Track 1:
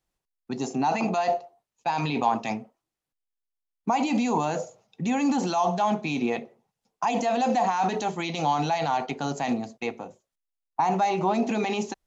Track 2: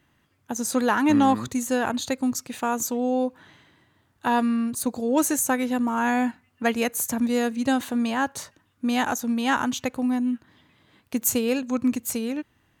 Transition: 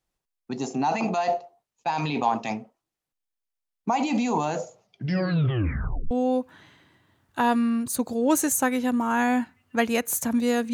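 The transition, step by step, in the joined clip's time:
track 1
4.82 s: tape stop 1.29 s
6.11 s: go over to track 2 from 2.98 s

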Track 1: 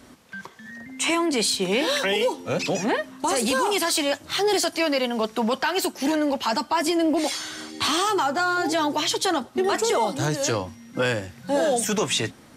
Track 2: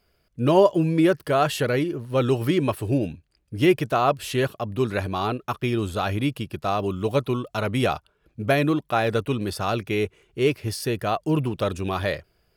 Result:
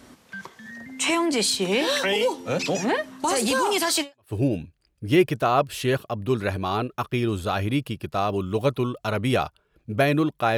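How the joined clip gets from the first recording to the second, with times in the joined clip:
track 1
4.17 s: go over to track 2 from 2.67 s, crossfade 0.32 s exponential

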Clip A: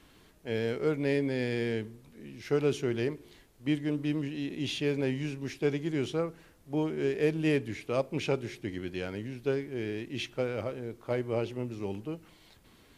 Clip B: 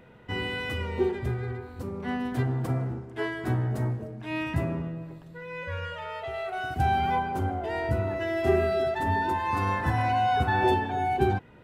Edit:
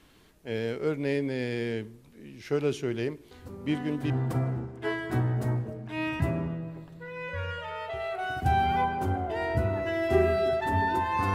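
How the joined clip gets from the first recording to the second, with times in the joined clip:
clip A
3.31 s: add clip B from 1.65 s 0.79 s -7.5 dB
4.10 s: go over to clip B from 2.44 s

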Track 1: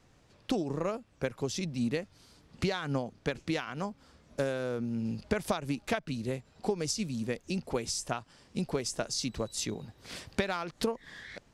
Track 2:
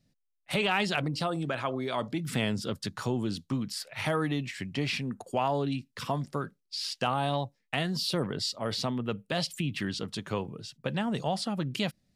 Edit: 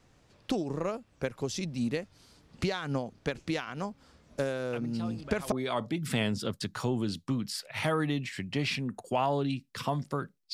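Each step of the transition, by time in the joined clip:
track 1
4.73 s: add track 2 from 0.95 s 0.79 s -12.5 dB
5.52 s: go over to track 2 from 1.74 s

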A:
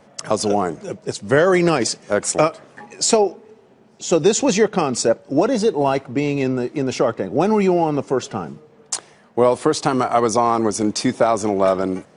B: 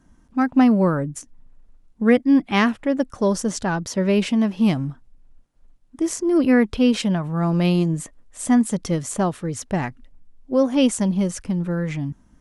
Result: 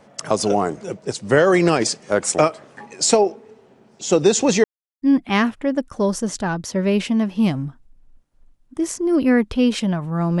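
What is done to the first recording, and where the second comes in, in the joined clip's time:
A
4.64–5.02 s: mute
5.02 s: go over to B from 2.24 s

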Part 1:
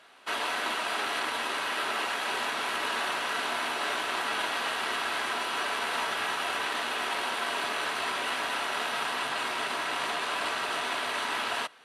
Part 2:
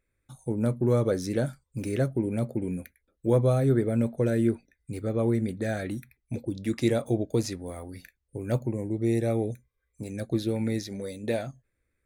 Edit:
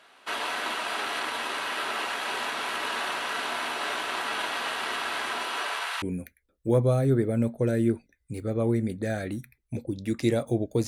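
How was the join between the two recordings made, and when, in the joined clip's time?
part 1
5.45–6.02 s: high-pass 180 Hz -> 1.3 kHz
6.02 s: go over to part 2 from 2.61 s

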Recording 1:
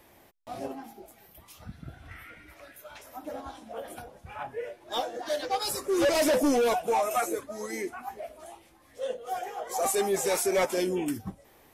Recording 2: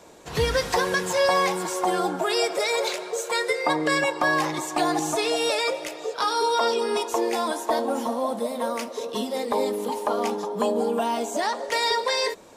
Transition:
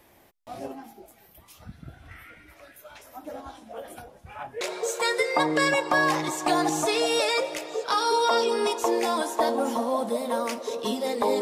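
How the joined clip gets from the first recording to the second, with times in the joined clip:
recording 1
4.61 s: go over to recording 2 from 2.91 s

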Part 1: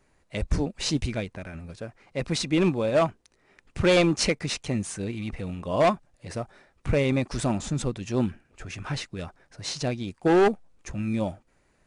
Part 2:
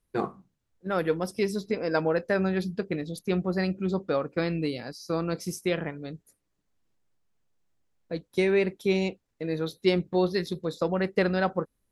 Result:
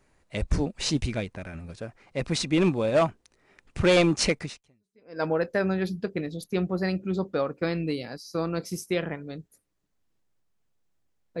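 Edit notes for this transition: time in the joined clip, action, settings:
part 1
4.83 s: go over to part 2 from 1.58 s, crossfade 0.82 s exponential

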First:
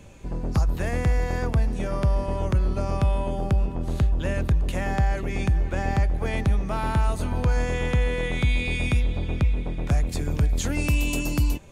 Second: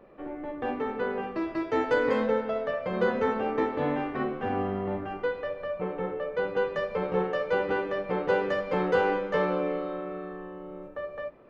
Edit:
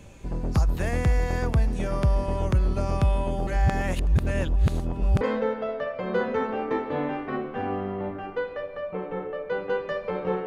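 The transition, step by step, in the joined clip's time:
first
3.47–5.21 s: reverse
5.21 s: go over to second from 2.08 s

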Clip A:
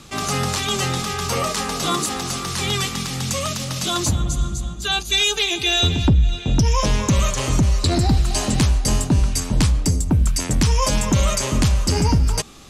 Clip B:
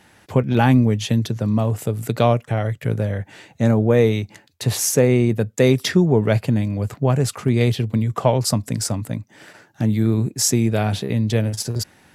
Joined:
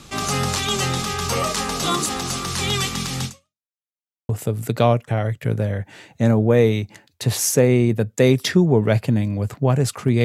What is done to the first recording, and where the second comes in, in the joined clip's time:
clip A
3.25–3.66 s: fade out exponential
3.66–4.29 s: mute
4.29 s: go over to clip B from 1.69 s

